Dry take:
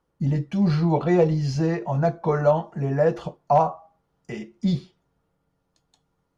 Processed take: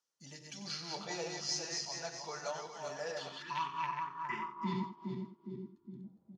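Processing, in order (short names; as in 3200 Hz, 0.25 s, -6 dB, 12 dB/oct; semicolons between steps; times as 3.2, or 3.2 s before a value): regenerating reverse delay 0.206 s, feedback 59%, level -3 dB; spectral gain 3.32–6.04, 420–880 Hz -28 dB; on a send: echo 92 ms -12 dB; on the sum: band-pass sweep 6000 Hz -> 250 Hz, 2.98–6.09; gain +6 dB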